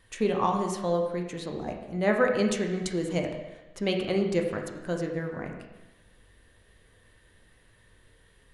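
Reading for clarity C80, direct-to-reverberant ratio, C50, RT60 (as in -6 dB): 7.0 dB, 2.0 dB, 5.0 dB, 1.1 s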